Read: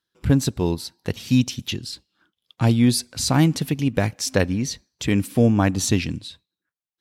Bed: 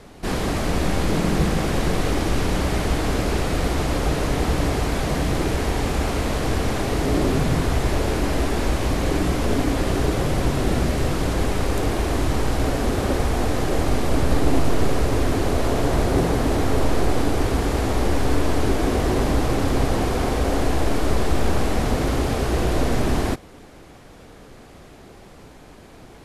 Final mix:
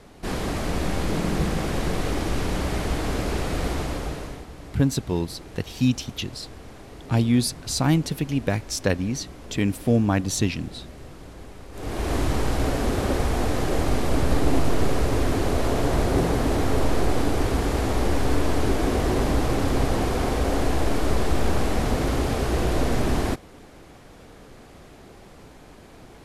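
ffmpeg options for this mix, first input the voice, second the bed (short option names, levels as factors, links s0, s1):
-filter_complex "[0:a]adelay=4500,volume=0.708[s0];[1:a]volume=5.01,afade=t=out:st=3.7:d=0.76:silence=0.158489,afade=t=in:st=11.72:d=0.42:silence=0.125893[s1];[s0][s1]amix=inputs=2:normalize=0"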